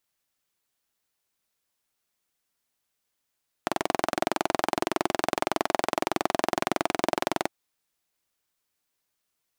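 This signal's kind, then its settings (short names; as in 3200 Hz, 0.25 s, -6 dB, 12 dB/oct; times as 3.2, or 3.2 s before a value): single-cylinder engine model, steady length 3.82 s, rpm 2600, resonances 350/660 Hz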